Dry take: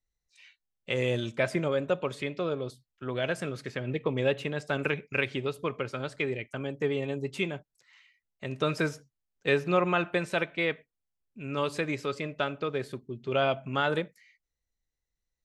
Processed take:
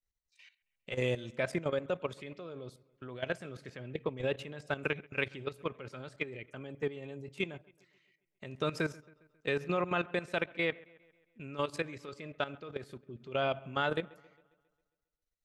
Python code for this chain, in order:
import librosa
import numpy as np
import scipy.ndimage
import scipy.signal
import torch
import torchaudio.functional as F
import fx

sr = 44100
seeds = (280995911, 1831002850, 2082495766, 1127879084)

p1 = fx.level_steps(x, sr, step_db=14)
p2 = p1 + fx.echo_wet_lowpass(p1, sr, ms=135, feedback_pct=53, hz=2800.0, wet_db=-23, dry=0)
y = F.gain(torch.from_numpy(p2), -2.0).numpy()